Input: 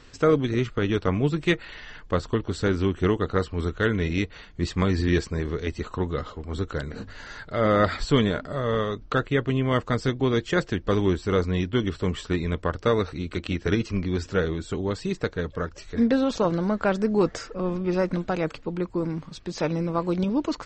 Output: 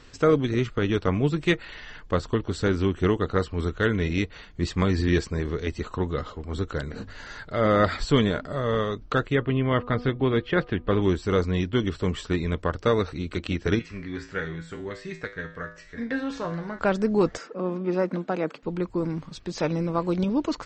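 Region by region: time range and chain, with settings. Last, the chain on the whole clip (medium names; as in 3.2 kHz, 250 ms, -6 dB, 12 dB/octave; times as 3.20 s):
9.35–11.02 s: low-pass 3.5 kHz 24 dB/octave + de-hum 244.8 Hz, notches 5
13.79–16.79 s: peaking EQ 1.8 kHz +13 dB 0.78 oct + feedback comb 55 Hz, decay 0.43 s, harmonics odd, mix 80%
17.37–18.63 s: high-pass 180 Hz 24 dB/octave + treble shelf 2.9 kHz -9 dB
whole clip: none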